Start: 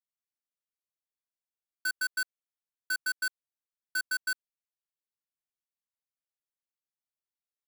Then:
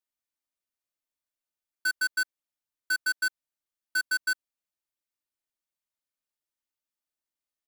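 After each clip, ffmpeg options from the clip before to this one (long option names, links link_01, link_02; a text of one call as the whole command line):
ffmpeg -i in.wav -af "aecho=1:1:3.3:0.45,volume=1dB" out.wav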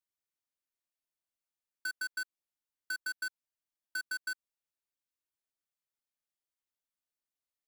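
ffmpeg -i in.wav -af "acompressor=threshold=-31dB:ratio=6,volume=-4.5dB" out.wav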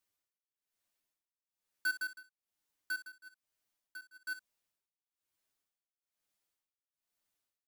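ffmpeg -i in.wav -filter_complex "[0:a]asoftclip=type=tanh:threshold=-38.5dB,tremolo=f=1.1:d=0.98,asplit=2[link_01][link_02];[link_02]aecho=0:1:10|60:0.596|0.282[link_03];[link_01][link_03]amix=inputs=2:normalize=0,volume=6.5dB" out.wav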